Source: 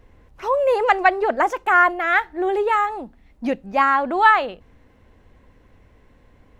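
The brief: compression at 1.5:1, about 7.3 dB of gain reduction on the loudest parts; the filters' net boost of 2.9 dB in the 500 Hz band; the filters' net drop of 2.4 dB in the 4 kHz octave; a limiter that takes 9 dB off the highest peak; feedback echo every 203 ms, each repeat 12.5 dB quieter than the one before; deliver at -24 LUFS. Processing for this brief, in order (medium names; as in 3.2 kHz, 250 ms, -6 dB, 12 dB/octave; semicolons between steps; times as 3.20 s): peaking EQ 500 Hz +3.5 dB; peaking EQ 4 kHz -3.5 dB; compression 1.5:1, threshold -30 dBFS; peak limiter -17 dBFS; feedback delay 203 ms, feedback 24%, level -12.5 dB; trim +2 dB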